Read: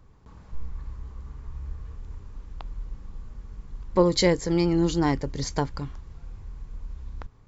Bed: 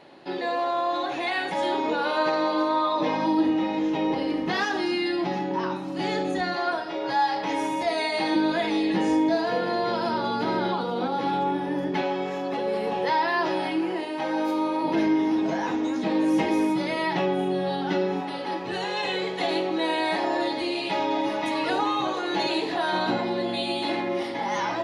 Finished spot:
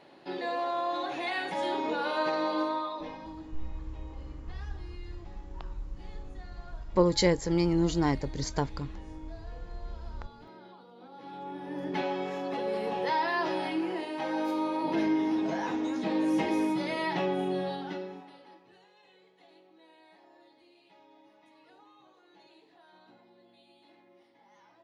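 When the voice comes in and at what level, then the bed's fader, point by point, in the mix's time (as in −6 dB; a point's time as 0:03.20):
3.00 s, −3.5 dB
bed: 0:02.63 −5.5 dB
0:03.51 −25.5 dB
0:10.97 −25.5 dB
0:11.98 −5 dB
0:17.60 −5 dB
0:18.94 −33.5 dB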